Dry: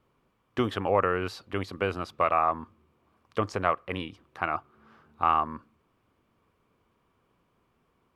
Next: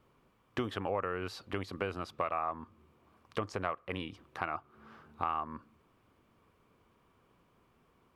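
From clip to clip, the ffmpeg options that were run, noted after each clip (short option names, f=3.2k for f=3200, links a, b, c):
-af "acompressor=threshold=-38dB:ratio=2.5,volume=2dB"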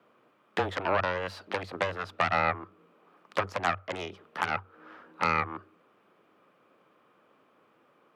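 -af "aeval=exprs='0.168*(cos(1*acos(clip(val(0)/0.168,-1,1)))-cos(1*PI/2))+0.0422*(cos(8*acos(clip(val(0)/0.168,-1,1)))-cos(8*PI/2))':c=same,afreqshift=93,bass=f=250:g=-11,treble=f=4k:g=-10,volume=6dB"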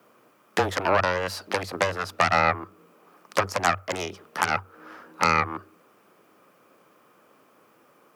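-af "aexciter=amount=3.1:drive=6.6:freq=4.9k,volume=5.5dB"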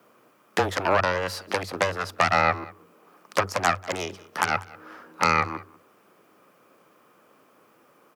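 -af "aecho=1:1:192:0.0841"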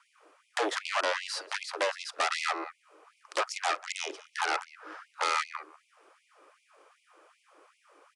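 -af "volume=23.5dB,asoftclip=hard,volume=-23.5dB,aresample=22050,aresample=44100,afftfilt=real='re*gte(b*sr/1024,260*pow(2100/260,0.5+0.5*sin(2*PI*2.6*pts/sr)))':imag='im*gte(b*sr/1024,260*pow(2100/260,0.5+0.5*sin(2*PI*2.6*pts/sr)))':win_size=1024:overlap=0.75"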